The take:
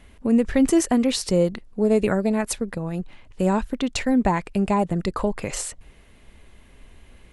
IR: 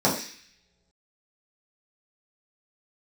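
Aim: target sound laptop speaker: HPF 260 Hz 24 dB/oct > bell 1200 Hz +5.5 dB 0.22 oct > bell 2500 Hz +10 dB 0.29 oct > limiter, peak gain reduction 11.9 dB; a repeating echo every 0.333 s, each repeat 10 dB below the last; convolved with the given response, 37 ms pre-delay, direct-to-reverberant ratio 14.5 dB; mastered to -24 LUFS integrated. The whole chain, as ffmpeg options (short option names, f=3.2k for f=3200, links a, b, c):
-filter_complex "[0:a]aecho=1:1:333|666|999|1332:0.316|0.101|0.0324|0.0104,asplit=2[a][b];[1:a]atrim=start_sample=2205,adelay=37[c];[b][c]afir=irnorm=-1:irlink=0,volume=-31dB[d];[a][d]amix=inputs=2:normalize=0,highpass=f=260:w=0.5412,highpass=f=260:w=1.3066,equalizer=f=1.2k:t=o:w=0.22:g=5.5,equalizer=f=2.5k:t=o:w=0.29:g=10,volume=6dB,alimiter=limit=-14.5dB:level=0:latency=1"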